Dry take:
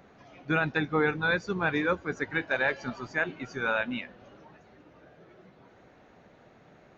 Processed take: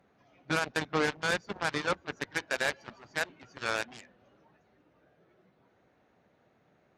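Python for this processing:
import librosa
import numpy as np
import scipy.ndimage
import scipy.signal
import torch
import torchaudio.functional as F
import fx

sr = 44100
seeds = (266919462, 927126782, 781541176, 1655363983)

y = fx.cheby_harmonics(x, sr, harmonics=(7,), levels_db=(-14,), full_scale_db=-14.5)
y = scipy.signal.sosfilt(scipy.signal.butter(2, 46.0, 'highpass', fs=sr, output='sos'), y)
y = y * librosa.db_to_amplitude(-3.0)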